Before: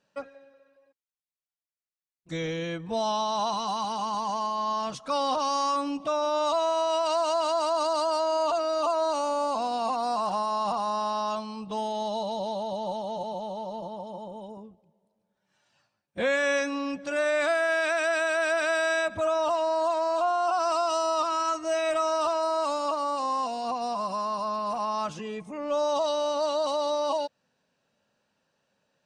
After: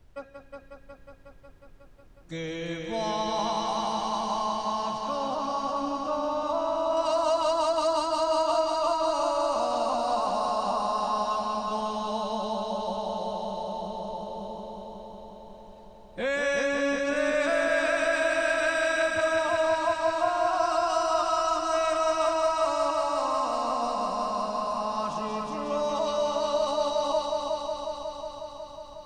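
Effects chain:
0:04.92–0:06.97: high-shelf EQ 2,000 Hz −12 dB
background noise brown −53 dBFS
echo machine with several playback heads 182 ms, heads first and second, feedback 74%, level −6.5 dB
level −3 dB

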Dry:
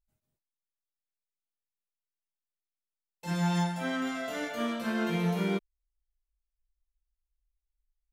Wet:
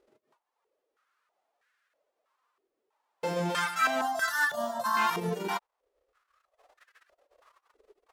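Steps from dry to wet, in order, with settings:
spectral envelope flattened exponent 0.1
reverb reduction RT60 1.1 s
downward compressor 3 to 1, threshold −44 dBFS, peak gain reduction 14 dB
0:04.01–0:04.97: phaser with its sweep stopped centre 990 Hz, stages 4
boost into a limiter +34 dB
band-pass on a step sequencer 3.1 Hz 400–1,600 Hz

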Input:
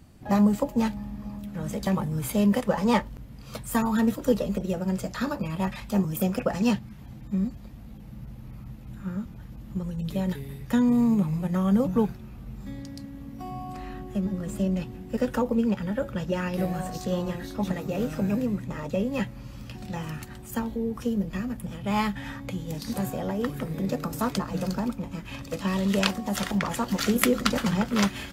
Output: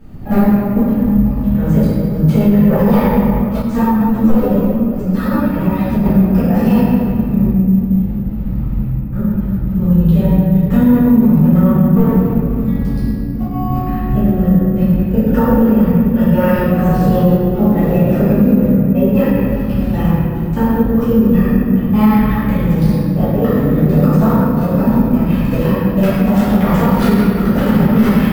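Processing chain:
wavefolder on the positive side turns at −16.5 dBFS
low-pass filter 2,000 Hz 6 dB per octave
low-shelf EQ 320 Hz +7.5 dB
mains-hum notches 60/120/180/240 Hz
downward compressor 3 to 1, threshold −23 dBFS, peak gain reduction 9 dB
gate pattern "xxxxx...x.xxx.xx" 171 BPM −60 dB
convolution reverb RT60 2.6 s, pre-delay 4 ms, DRR −13 dB
bad sample-rate conversion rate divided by 3×, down none, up hold
boost into a limiter +4 dB
0:03.62–0:06.06: string-ensemble chorus
level −1.5 dB

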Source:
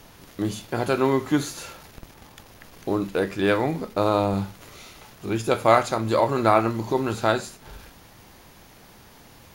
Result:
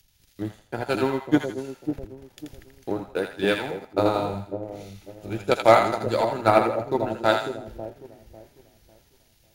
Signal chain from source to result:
notch filter 1,100 Hz, Q 5.7
in parallel at −2.5 dB: upward compression, threshold −28 dBFS
on the sum: transient designer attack +6 dB, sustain −12 dB
on a send: echo with a time of its own for lows and highs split 670 Hz, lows 548 ms, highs 82 ms, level −4 dB
on the sum: bit-depth reduction 12 bits, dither triangular
multiband upward and downward expander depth 100%
level −10.5 dB

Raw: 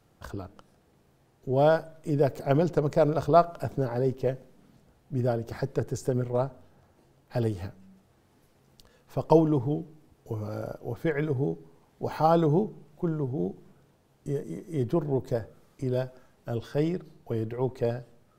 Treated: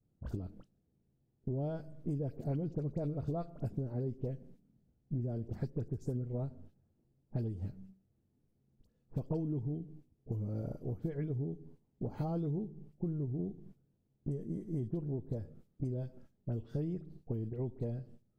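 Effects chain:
noise gate −51 dBFS, range −14 dB
drawn EQ curve 230 Hz 0 dB, 1,100 Hz −20 dB, 2,300 Hz −18 dB
downward compressor 6 to 1, threshold −37 dBFS, peak gain reduction 16 dB
all-pass dispersion highs, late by 54 ms, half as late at 1,800 Hz
level +3.5 dB

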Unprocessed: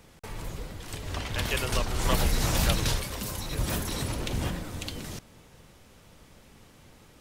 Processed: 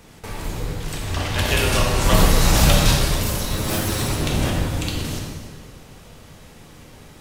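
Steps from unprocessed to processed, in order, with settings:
0:03.43–0:04.01: lower of the sound and its delayed copy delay 9.4 ms
convolution reverb RT60 1.6 s, pre-delay 8 ms, DRR −1.5 dB
level +6 dB

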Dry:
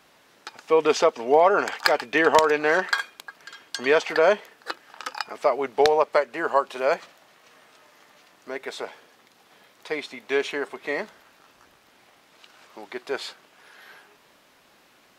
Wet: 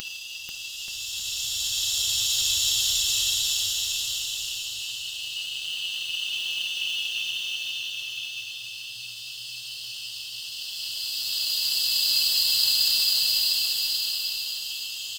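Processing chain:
played backwards from end to start
extreme stretch with random phases 19×, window 0.25 s, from 0:12.67
RIAA equalisation recording
brick-wall band-stop 120–2,600 Hz
bass and treble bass +13 dB, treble −9 dB
comb filter 4.9 ms, depth 39%
hum removal 244.9 Hz, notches 15
floating-point word with a short mantissa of 2 bits
bouncing-ball delay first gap 490 ms, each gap 0.8×, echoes 5
level +1.5 dB

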